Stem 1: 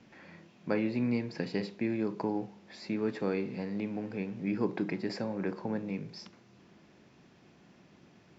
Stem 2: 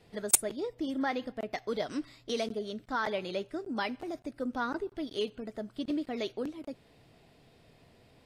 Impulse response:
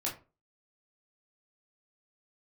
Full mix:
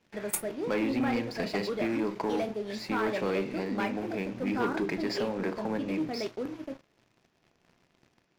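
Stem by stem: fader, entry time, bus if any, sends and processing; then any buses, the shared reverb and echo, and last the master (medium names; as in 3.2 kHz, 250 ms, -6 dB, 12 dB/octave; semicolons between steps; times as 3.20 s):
-4.5 dB, 0.00 s, no send, bass shelf 260 Hz -10 dB
-13.5 dB, 0.00 s, send -6.5 dB, high-order bell 5.3 kHz -9.5 dB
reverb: on, RT60 0.35 s, pre-delay 14 ms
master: waveshaping leveller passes 3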